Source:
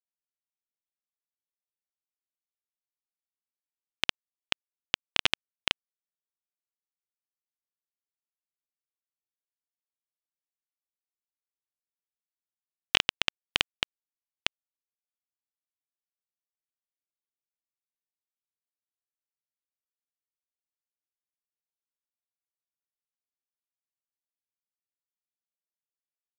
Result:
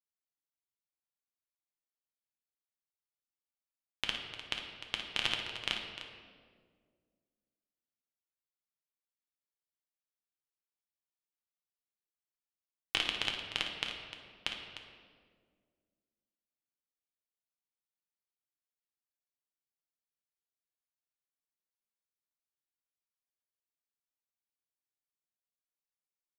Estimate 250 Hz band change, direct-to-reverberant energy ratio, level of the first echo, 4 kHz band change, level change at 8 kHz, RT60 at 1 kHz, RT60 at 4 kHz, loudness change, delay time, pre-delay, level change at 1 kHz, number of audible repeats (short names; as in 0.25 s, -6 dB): -4.0 dB, 0.5 dB, -10.0 dB, -5.5 dB, -7.0 dB, 1.5 s, 1.2 s, -6.5 dB, 56 ms, 6 ms, -5.5 dB, 2